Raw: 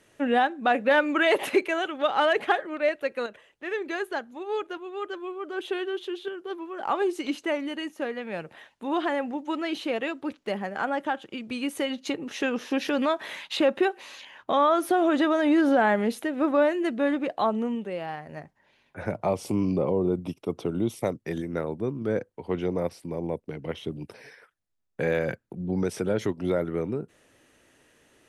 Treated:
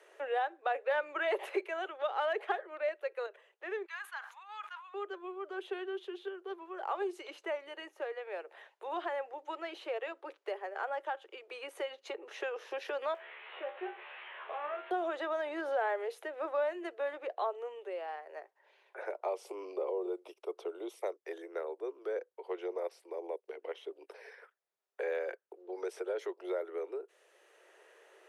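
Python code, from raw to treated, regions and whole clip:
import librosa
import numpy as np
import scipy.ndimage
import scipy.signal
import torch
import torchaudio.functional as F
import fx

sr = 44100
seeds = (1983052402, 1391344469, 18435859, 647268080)

y = fx.chain(x, sr, fx.cheby1_highpass(hz=1000.0, order=4),
    fx.sustainer(db_per_s=110.0), at=(3.85, 4.94))
y = fx.chain(y, sr, fx.delta_mod(bps=16000, step_db=-30.0),
    fx.tilt_eq(slope=2.5),
    fx.comb_fb(f0_hz=73.0, decay_s=0.28, harmonics='all', damping=0.0, mix_pct=90), at=(13.14, 14.91))
y = scipy.signal.sosfilt(scipy.signal.butter(12, 370.0, 'highpass', fs=sr, output='sos'), y)
y = fx.high_shelf(y, sr, hz=2700.0, db=-9.0)
y = fx.band_squash(y, sr, depth_pct=40)
y = F.gain(torch.from_numpy(y), -7.5).numpy()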